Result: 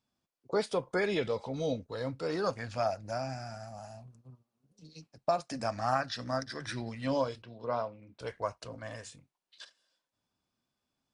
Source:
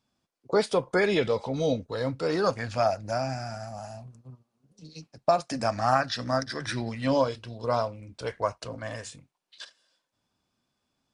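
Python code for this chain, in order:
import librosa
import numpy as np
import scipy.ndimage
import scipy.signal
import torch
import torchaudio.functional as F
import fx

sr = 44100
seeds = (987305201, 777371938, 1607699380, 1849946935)

y = fx.bandpass_edges(x, sr, low_hz=140.0, high_hz=3200.0, at=(7.42, 8.2))
y = y * 10.0 ** (-6.5 / 20.0)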